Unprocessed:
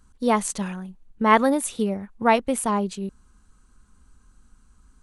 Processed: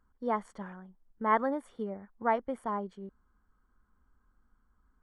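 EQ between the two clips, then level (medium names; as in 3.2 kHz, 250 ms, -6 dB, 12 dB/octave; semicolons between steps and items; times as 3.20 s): Savitzky-Golay filter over 41 samples; peaking EQ 140 Hz -4 dB 0.77 oct; bass shelf 340 Hz -6.5 dB; -8.0 dB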